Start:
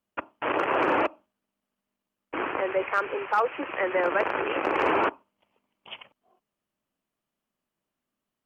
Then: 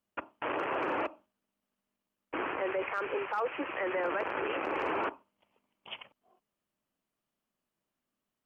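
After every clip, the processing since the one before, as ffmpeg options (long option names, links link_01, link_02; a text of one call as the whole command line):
ffmpeg -i in.wav -af "alimiter=limit=-22.5dB:level=0:latency=1:release=19,volume=-2dB" out.wav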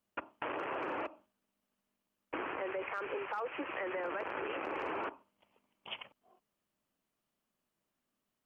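ffmpeg -i in.wav -af "acompressor=threshold=-38dB:ratio=3,volume=1dB" out.wav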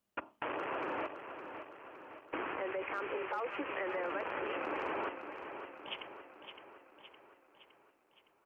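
ffmpeg -i in.wav -af "aecho=1:1:563|1126|1689|2252|2815|3378:0.355|0.195|0.107|0.059|0.0325|0.0179" out.wav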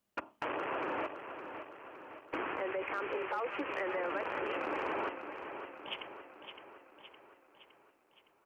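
ffmpeg -i in.wav -af "volume=29dB,asoftclip=hard,volume=-29dB,volume=1.5dB" out.wav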